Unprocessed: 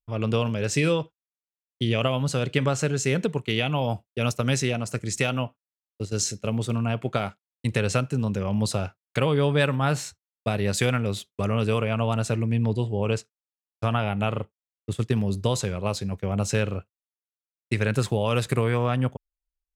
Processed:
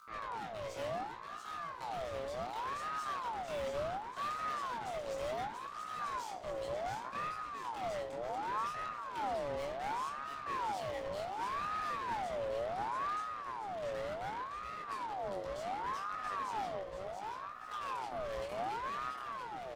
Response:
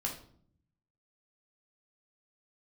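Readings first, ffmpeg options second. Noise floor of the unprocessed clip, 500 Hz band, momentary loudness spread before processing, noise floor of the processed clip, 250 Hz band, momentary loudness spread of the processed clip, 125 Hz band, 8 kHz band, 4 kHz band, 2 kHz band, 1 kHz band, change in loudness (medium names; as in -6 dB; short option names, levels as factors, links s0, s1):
under -85 dBFS, -12.5 dB, 7 LU, -46 dBFS, -24.5 dB, 5 LU, -30.0 dB, -22.0 dB, -16.5 dB, -13.0 dB, -2.5 dB, -13.5 dB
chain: -filter_complex "[0:a]acrossover=split=2800[s0][s1];[s1]acompressor=threshold=0.00501:ratio=4:attack=1:release=60[s2];[s0][s2]amix=inputs=2:normalize=0,bandreject=f=50:t=h:w=6,bandreject=f=100:t=h:w=6,bandreject=f=150:t=h:w=6,bandreject=f=200:t=h:w=6,acompressor=mode=upward:threshold=0.0224:ratio=2.5,alimiter=limit=0.158:level=0:latency=1:release=173,asplit=2[s3][s4];[s4]highpass=f=720:p=1,volume=6.31,asoftclip=type=tanh:threshold=0.158[s5];[s3][s5]amix=inputs=2:normalize=0,lowpass=f=4700:p=1,volume=0.501,flanger=delay=4.5:depth=7.3:regen=-80:speed=1.4:shape=triangular,aeval=exprs='(tanh(70.8*val(0)+0.75)-tanh(0.75))/70.8':c=same,aeval=exprs='val(0)+0.00316*(sin(2*PI*60*n/s)+sin(2*PI*2*60*n/s)/2+sin(2*PI*3*60*n/s)/3+sin(2*PI*4*60*n/s)/4+sin(2*PI*5*60*n/s)/5)':c=same,flanger=delay=20:depth=4.6:speed=0.19,aecho=1:1:685|1370|2055|2740|3425|4110|4795|5480:0.596|0.334|0.187|0.105|0.0586|0.0328|0.0184|0.0103,asplit=2[s6][s7];[1:a]atrim=start_sample=2205[s8];[s7][s8]afir=irnorm=-1:irlink=0,volume=0.668[s9];[s6][s9]amix=inputs=2:normalize=0,aeval=exprs='val(0)*sin(2*PI*900*n/s+900*0.4/0.68*sin(2*PI*0.68*n/s))':c=same,volume=0.531"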